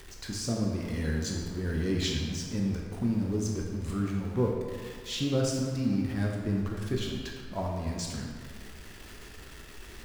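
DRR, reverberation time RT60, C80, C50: −1.5 dB, 1.8 s, 3.5 dB, 1.5 dB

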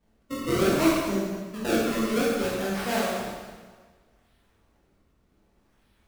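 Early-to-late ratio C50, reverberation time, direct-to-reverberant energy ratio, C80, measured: −1.5 dB, 1.5 s, −7.0 dB, 1.0 dB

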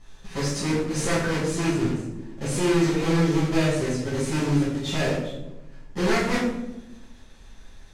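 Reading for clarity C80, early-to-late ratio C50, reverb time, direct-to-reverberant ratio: 5.0 dB, 1.5 dB, 0.95 s, −10.5 dB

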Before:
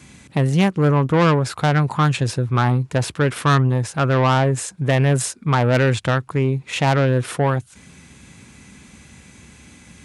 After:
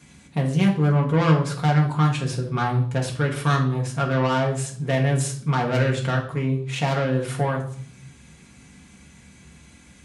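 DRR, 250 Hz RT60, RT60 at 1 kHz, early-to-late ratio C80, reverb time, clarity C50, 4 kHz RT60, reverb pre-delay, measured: −1.5 dB, 0.95 s, 0.55 s, 13.0 dB, 0.55 s, 9.0 dB, 0.50 s, 4 ms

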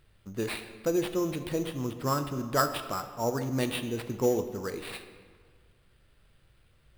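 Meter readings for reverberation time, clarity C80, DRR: 1.8 s, 11.5 dB, 8.5 dB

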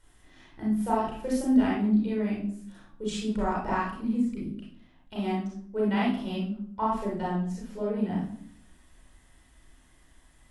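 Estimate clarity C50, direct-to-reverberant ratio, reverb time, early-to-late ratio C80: 0.0 dB, −6.0 dB, 0.60 s, 6.5 dB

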